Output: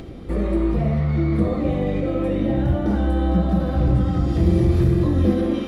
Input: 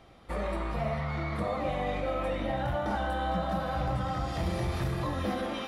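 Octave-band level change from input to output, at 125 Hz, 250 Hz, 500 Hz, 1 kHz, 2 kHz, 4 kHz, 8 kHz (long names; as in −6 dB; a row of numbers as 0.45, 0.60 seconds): +14.0 dB, +15.5 dB, +8.0 dB, −1.0 dB, −0.5 dB, +0.5 dB, can't be measured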